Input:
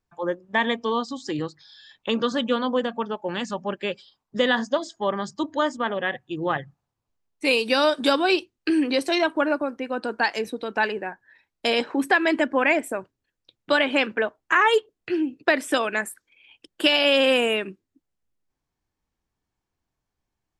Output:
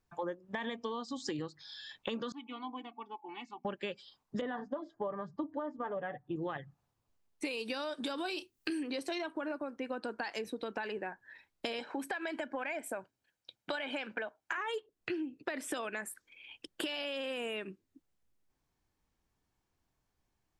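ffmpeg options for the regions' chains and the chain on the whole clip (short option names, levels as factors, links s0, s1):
-filter_complex "[0:a]asettb=1/sr,asplit=3[s0][s1][s2];[s0]atrim=end=2.324[s3];[s1]atrim=start=2.32:end=3.65,asetpts=PTS-STARTPTS,afade=t=in:d=0.004:c=qsin,afade=t=out:st=1.326:d=0.004:c=qsin,asplit=3[s4][s5][s6];[s4]bandpass=f=300:t=q:w=8,volume=1[s7];[s5]bandpass=f=870:t=q:w=8,volume=0.501[s8];[s6]bandpass=f=2240:t=q:w=8,volume=0.355[s9];[s7][s8][s9]amix=inputs=3:normalize=0,equalizer=f=320:w=1.2:g=-12.5,aecho=1:1:2.7:0.78,atrim=end_sample=58653[s10];[s2]atrim=start=3.646[s11];[s3][s10]acrossfade=d=0.004:c1=hsin:c2=qsin[s12];[s12][s11]acrossfade=d=0.004:c1=qsin:c2=hsin,asettb=1/sr,asplit=3[s13][s14][s15];[s13]atrim=end=4.414[s16];[s14]atrim=start=4.41:end=6.36,asetpts=PTS-STARTPTS,afade=t=in:d=0.004:c=qsin,afade=t=out:st=1.946:d=0.004:c=qsin,lowpass=1200,aecho=1:1:6.8:0.6,atrim=end_sample=85995[s17];[s15]atrim=start=6.356[s18];[s16][s17]acrossfade=d=0.004:c1=hsin:c2=qsin[s19];[s19][s18]acrossfade=d=0.004:c1=qsin:c2=hsin,asettb=1/sr,asplit=3[s20][s21][s22];[s20]atrim=end=8.184[s23];[s21]atrim=start=8.18:end=8.83,asetpts=PTS-STARTPTS,afade=t=in:d=0.004:c=qsin,afade=t=out:st=0.646:d=0.004:c=qsin,aemphasis=mode=production:type=50kf,asplit=2[s24][s25];[s25]adelay=30,volume=0.251[s26];[s24][s26]amix=inputs=2:normalize=0,atrim=end_sample=28665[s27];[s22]atrim=start=8.826[s28];[s23][s27]acrossfade=d=0.004:c1=hsin:c2=qsin[s29];[s29][s28]acrossfade=d=0.004:c1=qsin:c2=hsin,asettb=1/sr,asplit=3[s30][s31][s32];[s30]atrim=end=11.794[s33];[s31]atrim=start=11.79:end=14.58,asetpts=PTS-STARTPTS,afade=t=in:d=0.004:c=qsin,afade=t=out:st=2.786:d=0.004:c=qsin,highpass=f=270:p=1,aecho=1:1:1.3:0.36,atrim=end_sample=123039,acompressor=threshold=0.0794:ratio=3:attack=3.2:release=140:knee=1:detection=peak[s34];[s32]atrim=start=14.576[s35];[s33][s34]acrossfade=d=0.004:c1=hsin:c2=qsin[s36];[s36][s35]acrossfade=d=0.004:c1=qsin:c2=hsin,alimiter=limit=0.178:level=0:latency=1:release=22,acompressor=threshold=0.0158:ratio=8,volume=1.12"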